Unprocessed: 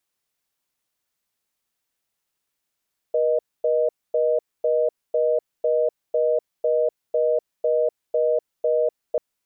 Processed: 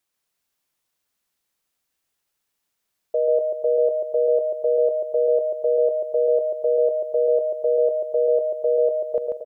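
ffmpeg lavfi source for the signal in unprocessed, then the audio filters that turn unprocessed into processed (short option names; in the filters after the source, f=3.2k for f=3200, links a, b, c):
-f lavfi -i "aevalsrc='0.1*(sin(2*PI*480*t)+sin(2*PI*620*t))*clip(min(mod(t,0.5),0.25-mod(t,0.5))/0.005,0,1)':d=6.04:s=44100"
-filter_complex "[0:a]asplit=2[a][b];[b]aecho=0:1:140|266|379.4|481.5|573.3:0.631|0.398|0.251|0.158|0.1[c];[a][c]amix=inputs=2:normalize=0"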